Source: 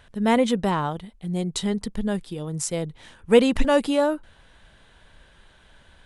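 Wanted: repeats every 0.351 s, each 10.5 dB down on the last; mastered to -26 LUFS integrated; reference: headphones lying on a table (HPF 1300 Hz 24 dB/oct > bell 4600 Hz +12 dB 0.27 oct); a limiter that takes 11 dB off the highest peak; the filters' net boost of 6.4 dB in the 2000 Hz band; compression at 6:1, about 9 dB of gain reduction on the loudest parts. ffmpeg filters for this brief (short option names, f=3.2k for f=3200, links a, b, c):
-af "equalizer=f=2k:t=o:g=8,acompressor=threshold=-19dB:ratio=6,alimiter=limit=-21.5dB:level=0:latency=1,highpass=f=1.3k:w=0.5412,highpass=f=1.3k:w=1.3066,equalizer=f=4.6k:t=o:w=0.27:g=12,aecho=1:1:351|702|1053:0.299|0.0896|0.0269,volume=11dB"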